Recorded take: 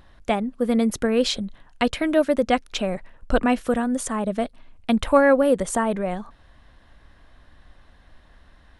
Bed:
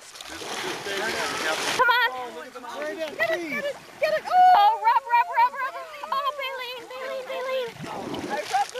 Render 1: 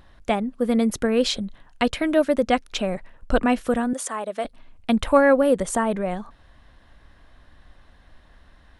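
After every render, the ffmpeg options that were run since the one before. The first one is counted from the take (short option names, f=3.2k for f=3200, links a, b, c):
-filter_complex "[0:a]asettb=1/sr,asplit=3[a][b][c];[a]atrim=end=3.934[d];[b]atrim=start=3.93:end=4.45,asetpts=PTS-STARTPTS,afade=t=in:d=0.004:c=qsin,afade=t=out:st=0.516:d=0.004:c=qsin,highpass=480[e];[c]atrim=start=4.446[f];[d][e]acrossfade=d=0.004:c1=hsin:c2=qsin[g];[g][f]acrossfade=d=0.004:c1=qsin:c2=hsin"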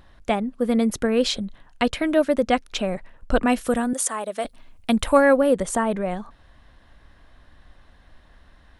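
-filter_complex "[0:a]asettb=1/sr,asplit=3[a][b][c];[a]atrim=end=3.474[d];[b]atrim=start=3.47:end=5.38,asetpts=PTS-STARTPTS,afade=t=in:d=0.004:c=qsin,afade=t=out:st=1.906:d=0.004:c=qsin,highshelf=f=6.1k:g=10.5[e];[c]atrim=start=5.376[f];[d][e]acrossfade=d=0.004:c1=hsin:c2=qsin[g];[g][f]acrossfade=d=0.004:c1=qsin:c2=hsin"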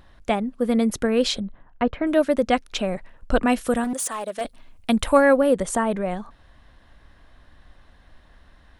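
-filter_complex "[0:a]asettb=1/sr,asplit=3[a][b][c];[a]atrim=end=1.404[d];[b]atrim=start=1.4:end=2.07,asetpts=PTS-STARTPTS,afade=t=in:d=0.004:c=qsin,afade=t=out:st=0.666:d=0.004:c=qsin,lowpass=1.5k[e];[c]atrim=start=2.066[f];[d][e]acrossfade=d=0.004:c1=hsin:c2=qsin[g];[g][f]acrossfade=d=0.004:c1=qsin:c2=hsin,asettb=1/sr,asplit=3[h][i][j];[h]atrim=end=3.844[k];[i]atrim=start=3.84:end=4.41,asetpts=PTS-STARTPTS,afade=t=in:d=0.004:c=qsin,afade=t=out:st=0.566:d=0.004:c=qsin,asoftclip=type=hard:threshold=-23dB[l];[j]atrim=start=4.406[m];[k][l]acrossfade=d=0.004:c1=hsin:c2=qsin[n];[n][m]acrossfade=d=0.004:c1=qsin:c2=hsin"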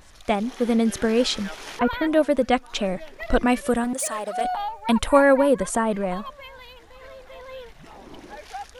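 -filter_complex "[1:a]volume=-11.5dB[a];[0:a][a]amix=inputs=2:normalize=0"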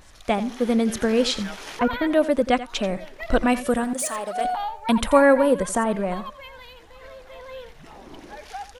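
-af "aecho=1:1:86:0.188"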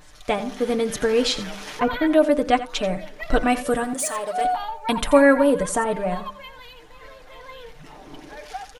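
-af "aecho=1:1:6.7:0.59,bandreject=f=99.54:t=h:w=4,bandreject=f=199.08:t=h:w=4,bandreject=f=298.62:t=h:w=4,bandreject=f=398.16:t=h:w=4,bandreject=f=497.7:t=h:w=4,bandreject=f=597.24:t=h:w=4,bandreject=f=696.78:t=h:w=4,bandreject=f=796.32:t=h:w=4,bandreject=f=895.86:t=h:w=4,bandreject=f=995.4:t=h:w=4,bandreject=f=1.09494k:t=h:w=4,bandreject=f=1.19448k:t=h:w=4,bandreject=f=1.29402k:t=h:w=4,bandreject=f=1.39356k:t=h:w=4,bandreject=f=1.4931k:t=h:w=4"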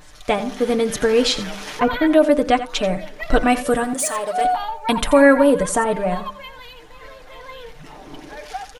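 -af "volume=3.5dB,alimiter=limit=-3dB:level=0:latency=1"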